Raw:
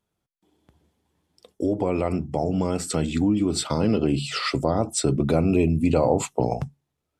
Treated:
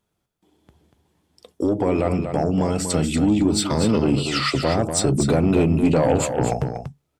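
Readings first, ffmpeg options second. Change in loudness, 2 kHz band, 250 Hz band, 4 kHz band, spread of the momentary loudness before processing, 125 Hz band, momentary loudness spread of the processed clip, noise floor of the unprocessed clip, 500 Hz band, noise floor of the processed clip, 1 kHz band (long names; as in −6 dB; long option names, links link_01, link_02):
+3.0 dB, +4.5 dB, +3.5 dB, +4.5 dB, 6 LU, +3.5 dB, 6 LU, −80 dBFS, +2.5 dB, −75 dBFS, +3.0 dB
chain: -af "aeval=exprs='0.422*(cos(1*acos(clip(val(0)/0.422,-1,1)))-cos(1*PI/2))+0.0531*(cos(5*acos(clip(val(0)/0.422,-1,1)))-cos(5*PI/2))':channel_layout=same,aecho=1:1:239:0.422"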